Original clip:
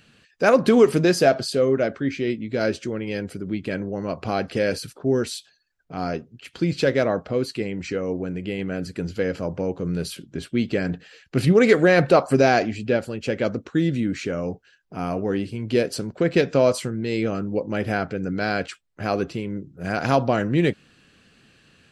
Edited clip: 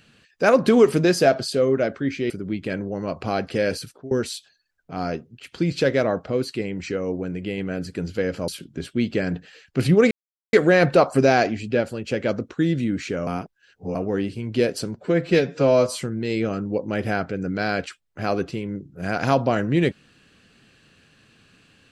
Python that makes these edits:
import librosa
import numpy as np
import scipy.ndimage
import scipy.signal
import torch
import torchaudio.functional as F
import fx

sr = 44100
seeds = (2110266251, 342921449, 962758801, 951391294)

y = fx.edit(x, sr, fx.cut(start_s=2.3, length_s=1.01),
    fx.fade_out_to(start_s=4.82, length_s=0.3, floor_db=-22.0),
    fx.cut(start_s=9.49, length_s=0.57),
    fx.insert_silence(at_s=11.69, length_s=0.42),
    fx.reverse_span(start_s=14.43, length_s=0.68),
    fx.stretch_span(start_s=16.12, length_s=0.69, factor=1.5), tone=tone)